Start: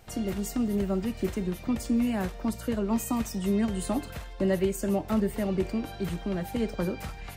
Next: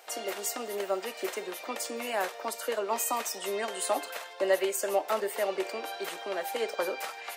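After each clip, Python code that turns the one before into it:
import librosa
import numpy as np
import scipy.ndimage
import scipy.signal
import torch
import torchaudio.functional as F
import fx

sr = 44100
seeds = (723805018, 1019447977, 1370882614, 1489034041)

y = scipy.signal.sosfilt(scipy.signal.butter(4, 480.0, 'highpass', fs=sr, output='sos'), x)
y = y * 10.0 ** (5.5 / 20.0)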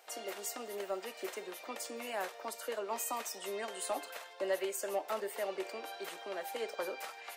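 y = 10.0 ** (-16.0 / 20.0) * np.tanh(x / 10.0 ** (-16.0 / 20.0))
y = y * 10.0 ** (-7.0 / 20.0)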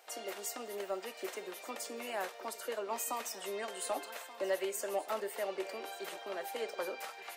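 y = x + 10.0 ** (-16.5 / 20.0) * np.pad(x, (int(1179 * sr / 1000.0), 0))[:len(x)]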